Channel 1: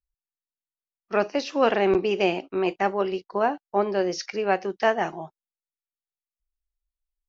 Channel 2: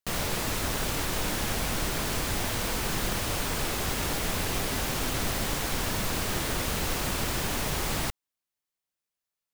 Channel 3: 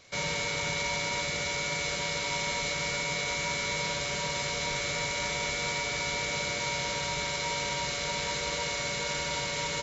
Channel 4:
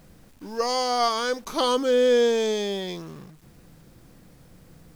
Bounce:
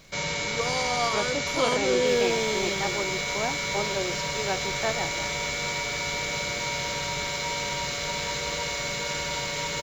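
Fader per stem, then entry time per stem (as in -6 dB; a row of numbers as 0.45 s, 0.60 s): -8.0 dB, -19.5 dB, +2.0 dB, -5.5 dB; 0.00 s, 2.00 s, 0.00 s, 0.00 s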